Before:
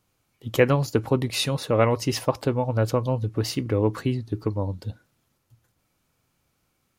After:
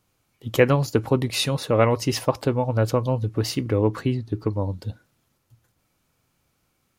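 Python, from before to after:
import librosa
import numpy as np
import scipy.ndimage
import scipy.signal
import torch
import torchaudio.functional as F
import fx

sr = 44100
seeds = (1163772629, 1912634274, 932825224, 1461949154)

y = fx.high_shelf(x, sr, hz=5900.0, db=-5.5, at=(3.81, 4.53))
y = F.gain(torch.from_numpy(y), 1.5).numpy()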